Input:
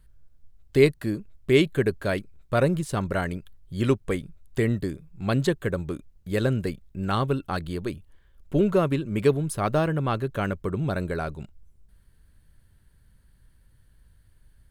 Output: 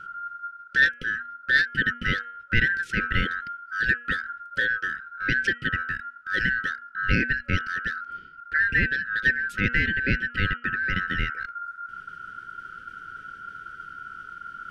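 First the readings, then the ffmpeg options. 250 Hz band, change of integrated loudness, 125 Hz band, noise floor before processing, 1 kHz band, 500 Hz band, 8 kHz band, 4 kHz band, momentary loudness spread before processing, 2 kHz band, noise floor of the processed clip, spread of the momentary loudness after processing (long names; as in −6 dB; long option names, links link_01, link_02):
−8.0 dB, +1.0 dB, −6.0 dB, −59 dBFS, 0.0 dB, −17.0 dB, can't be measured, +4.0 dB, 12 LU, +14.5 dB, −47 dBFS, 17 LU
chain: -filter_complex "[0:a]asplit=2[link_01][link_02];[link_02]acompressor=threshold=-32dB:ratio=6,volume=-3dB[link_03];[link_01][link_03]amix=inputs=2:normalize=0,lowpass=5200,aeval=exprs='val(0)*sin(2*PI*1400*n/s)':channel_layout=same,afftfilt=real='re*(1-between(b*sr/4096,560,1300))':imag='im*(1-between(b*sr/4096,560,1300))':win_size=4096:overlap=0.75,bass=frequency=250:gain=10,treble=frequency=4000:gain=-6,areverse,acompressor=mode=upward:threshold=-30dB:ratio=2.5,areverse,bandreject=frequency=239.7:width_type=h:width=4,bandreject=frequency=479.4:width_type=h:width=4,bandreject=frequency=719.1:width_type=h:width=4,bandreject=frequency=958.8:width_type=h:width=4,bandreject=frequency=1198.5:width_type=h:width=4,bandreject=frequency=1438.2:width_type=h:width=4,bandreject=frequency=1677.9:width_type=h:width=4,bandreject=frequency=1917.6:width_type=h:width=4,bandreject=frequency=2157.3:width_type=h:width=4,bandreject=frequency=2397:width_type=h:width=4,bandreject=frequency=2636.7:width_type=h:width=4,bandreject=frequency=2876.4:width_type=h:width=4,bandreject=frequency=3116.1:width_type=h:width=4,volume=3dB"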